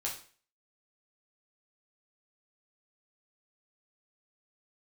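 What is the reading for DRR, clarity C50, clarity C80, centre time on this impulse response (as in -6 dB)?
-2.5 dB, 7.0 dB, 12.0 dB, 25 ms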